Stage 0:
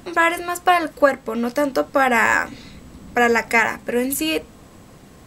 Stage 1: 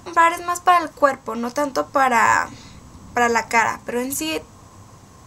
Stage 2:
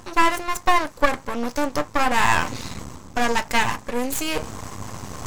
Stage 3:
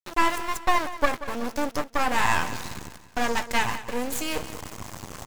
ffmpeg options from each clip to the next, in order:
ffmpeg -i in.wav -af "equalizer=frequency=100:width_type=o:width=0.67:gain=11,equalizer=frequency=1000:width_type=o:width=0.67:gain=11,equalizer=frequency=6300:width_type=o:width=0.67:gain=11,volume=-4.5dB" out.wav
ffmpeg -i in.wav -af "aeval=exprs='max(val(0),0)':channel_layout=same,areverse,acompressor=mode=upward:threshold=-21dB:ratio=2.5,areverse,volume=2dB" out.wav
ffmpeg -i in.wav -af "flanger=delay=1.5:depth=5.8:regen=-85:speed=1.5:shape=sinusoidal,aeval=exprs='val(0)*gte(abs(val(0)),0.0224)':channel_layout=same,aecho=1:1:185|370|555|740:0.188|0.0848|0.0381|0.0172" out.wav

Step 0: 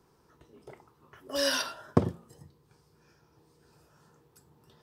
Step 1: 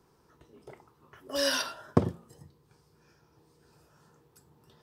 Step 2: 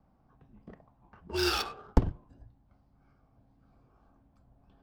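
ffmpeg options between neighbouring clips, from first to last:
ffmpeg -i in.wav -af anull out.wav
ffmpeg -i in.wav -af "adynamicsmooth=sensitivity=8:basefreq=1700,afreqshift=-200" out.wav

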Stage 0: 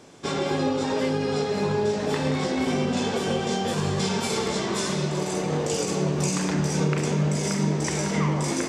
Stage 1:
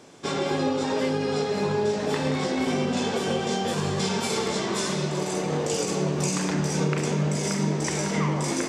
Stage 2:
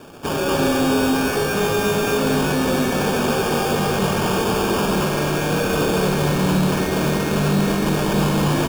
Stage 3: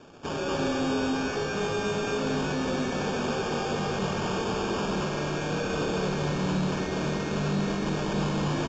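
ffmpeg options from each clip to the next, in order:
ffmpeg -i in.wav -af "lowshelf=frequency=72:gain=-9.5" out.wav
ffmpeg -i in.wav -filter_complex "[0:a]acrusher=samples=22:mix=1:aa=0.000001,asoftclip=type=tanh:threshold=-26.5dB,asplit=2[link_01][link_02];[link_02]aecho=0:1:75.8|236.2:0.316|0.891[link_03];[link_01][link_03]amix=inputs=2:normalize=0,volume=8.5dB" out.wav
ffmpeg -i in.wav -af "aresample=16000,aresample=44100,volume=-9dB" out.wav

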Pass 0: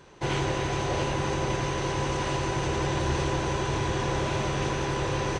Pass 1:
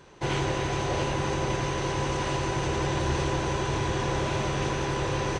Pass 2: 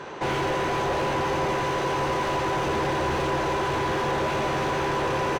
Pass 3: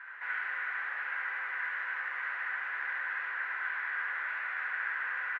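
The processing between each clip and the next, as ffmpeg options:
ffmpeg -i in.wav -af anull out.wav
ffmpeg -i in.wav -filter_complex "[0:a]asplit=2[link_01][link_02];[link_02]highpass=frequency=720:poles=1,volume=31dB,asoftclip=type=tanh:threshold=-14dB[link_03];[link_01][link_03]amix=inputs=2:normalize=0,lowpass=frequency=1100:poles=1,volume=-6dB,asplit=2[link_04][link_05];[link_05]adelay=13,volume=-12dB[link_06];[link_04][link_06]amix=inputs=2:normalize=0,volume=-3dB" out.wav
ffmpeg -i in.wav -af "asuperpass=centerf=1700:order=4:qfactor=2.7,aecho=1:1:71:0.668" out.wav

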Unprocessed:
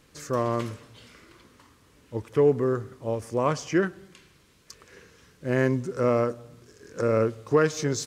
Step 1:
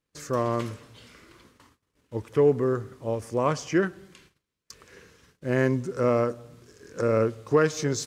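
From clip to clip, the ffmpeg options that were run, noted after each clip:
ffmpeg -i in.wav -af "agate=range=-25dB:threshold=-55dB:ratio=16:detection=peak" out.wav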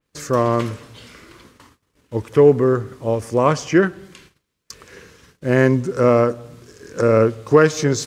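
ffmpeg -i in.wav -af "adynamicequalizer=threshold=0.00562:dfrequency=4000:dqfactor=0.7:tfrequency=4000:tqfactor=0.7:attack=5:release=100:ratio=0.375:range=2.5:mode=cutabove:tftype=highshelf,volume=8.5dB" out.wav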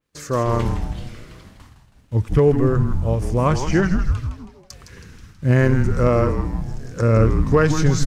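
ffmpeg -i in.wav -filter_complex "[0:a]asplit=7[link_01][link_02][link_03][link_04][link_05][link_06][link_07];[link_02]adelay=161,afreqshift=-150,volume=-8dB[link_08];[link_03]adelay=322,afreqshift=-300,volume=-13.7dB[link_09];[link_04]adelay=483,afreqshift=-450,volume=-19.4dB[link_10];[link_05]adelay=644,afreqshift=-600,volume=-25dB[link_11];[link_06]adelay=805,afreqshift=-750,volume=-30.7dB[link_12];[link_07]adelay=966,afreqshift=-900,volume=-36.4dB[link_13];[link_01][link_08][link_09][link_10][link_11][link_12][link_13]amix=inputs=7:normalize=0,asubboost=boost=9:cutoff=160,volume=-3dB" out.wav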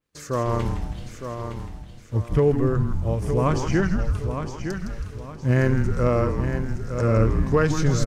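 ffmpeg -i in.wav -af "aecho=1:1:912|1824|2736|3648:0.398|0.135|0.046|0.0156,volume=-4dB" out.wav

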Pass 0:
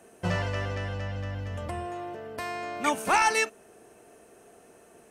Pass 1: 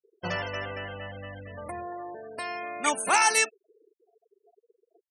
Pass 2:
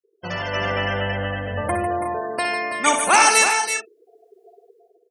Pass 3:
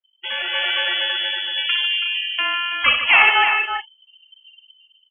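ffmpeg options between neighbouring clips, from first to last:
ffmpeg -i in.wav -af "afftfilt=real='re*gte(hypot(re,im),0.0141)':imag='im*gte(hypot(re,im),0.0141)':win_size=1024:overlap=0.75,aemphasis=mode=production:type=bsi" out.wav
ffmpeg -i in.wav -filter_complex "[0:a]dynaudnorm=framelen=160:gausssize=7:maxgain=15dB,asplit=2[link_01][link_02];[link_02]aecho=0:1:62|97|149|329|362:0.398|0.1|0.335|0.376|0.237[link_03];[link_01][link_03]amix=inputs=2:normalize=0,volume=-1dB" out.wav
ffmpeg -i in.wav -af "lowpass=frequency=3000:width_type=q:width=0.5098,lowpass=frequency=3000:width_type=q:width=0.6013,lowpass=frequency=3000:width_type=q:width=0.9,lowpass=frequency=3000:width_type=q:width=2.563,afreqshift=-3500,volume=2dB" out.wav

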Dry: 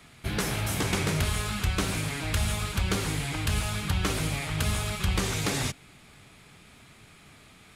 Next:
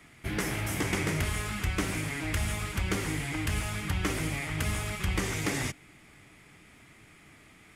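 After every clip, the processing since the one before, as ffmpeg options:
ffmpeg -i in.wav -af "equalizer=frequency=315:width_type=o:width=0.33:gain=7,equalizer=frequency=2000:width_type=o:width=0.33:gain=7,equalizer=frequency=4000:width_type=o:width=0.33:gain=-7,volume=-3.5dB" out.wav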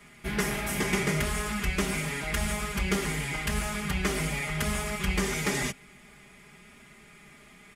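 ffmpeg -i in.wav -af "aecho=1:1:4.9:0.95" out.wav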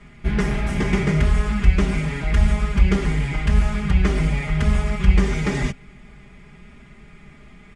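ffmpeg -i in.wav -af "lowpass=frequency=9900:width=0.5412,lowpass=frequency=9900:width=1.3066,aemphasis=mode=reproduction:type=bsi,volume=3dB" out.wav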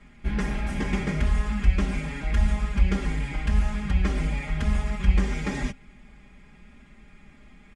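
ffmpeg -i in.wav -af "aecho=1:1:3.7:0.42,volume=-6.5dB" out.wav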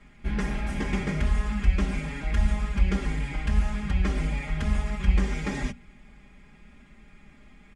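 ffmpeg -i in.wav -af "bandreject=frequency=59.89:width_type=h:width=4,bandreject=frequency=119.78:width_type=h:width=4,bandreject=frequency=179.67:width_type=h:width=4,bandreject=frequency=239.56:width_type=h:width=4,volume=-1dB" out.wav

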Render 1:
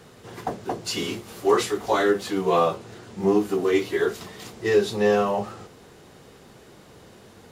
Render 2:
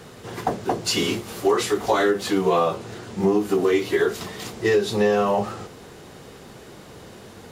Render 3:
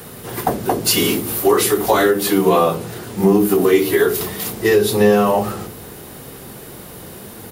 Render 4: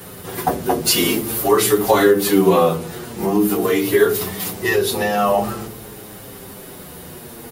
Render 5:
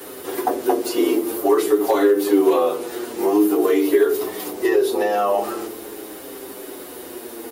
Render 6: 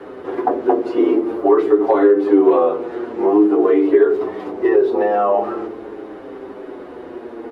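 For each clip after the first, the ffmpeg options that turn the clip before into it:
ffmpeg -i in.wav -af "acompressor=threshold=-22dB:ratio=5,volume=6dB" out.wav
ffmpeg -i in.wav -filter_complex "[0:a]highshelf=frequency=10000:gain=3.5,acrossover=split=400|7000[link_01][link_02][link_03];[link_01]aecho=1:1:67.06|169.1:0.708|0.355[link_04];[link_03]aexciter=amount=2.6:drive=9.5:freq=9100[link_05];[link_04][link_02][link_05]amix=inputs=3:normalize=0,volume=5dB" out.wav
ffmpeg -i in.wav -filter_complex "[0:a]asplit=2[link_01][link_02];[link_02]adelay=7.4,afreqshift=-0.47[link_03];[link_01][link_03]amix=inputs=2:normalize=1,volume=2.5dB" out.wav
ffmpeg -i in.wav -filter_complex "[0:a]asoftclip=type=hard:threshold=-5.5dB,acrossover=split=320|1200[link_01][link_02][link_03];[link_01]acompressor=threshold=-33dB:ratio=4[link_04];[link_02]acompressor=threshold=-19dB:ratio=4[link_05];[link_03]acompressor=threshold=-32dB:ratio=4[link_06];[link_04][link_05][link_06]amix=inputs=3:normalize=0,lowshelf=frequency=220:width_type=q:width=3:gain=-12" out.wav
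ffmpeg -i in.wav -af "lowpass=1500,volume=3.5dB" out.wav

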